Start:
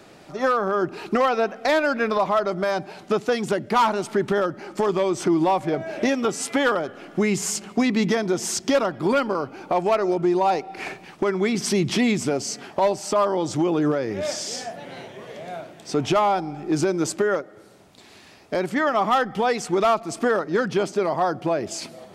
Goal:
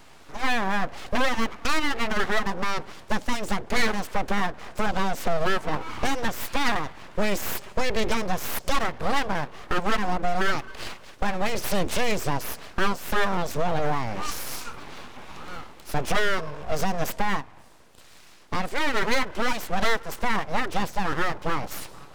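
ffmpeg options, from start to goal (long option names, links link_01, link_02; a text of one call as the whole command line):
ffmpeg -i in.wav -af "aeval=exprs='abs(val(0))':channel_layout=same" out.wav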